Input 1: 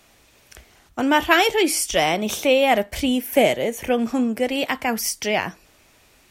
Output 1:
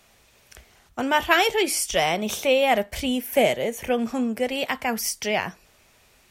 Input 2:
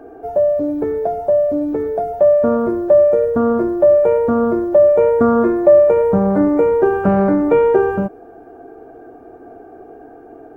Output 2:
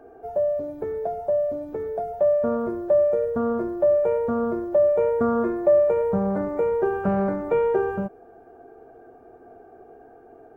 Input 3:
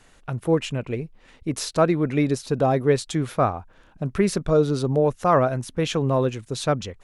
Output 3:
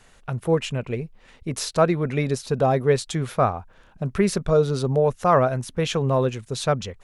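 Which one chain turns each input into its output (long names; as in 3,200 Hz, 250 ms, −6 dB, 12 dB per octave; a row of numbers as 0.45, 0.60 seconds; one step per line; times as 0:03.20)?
parametric band 300 Hz −10.5 dB 0.21 octaves
loudness normalisation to −23 LKFS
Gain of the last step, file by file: −2.5, −8.0, +1.0 decibels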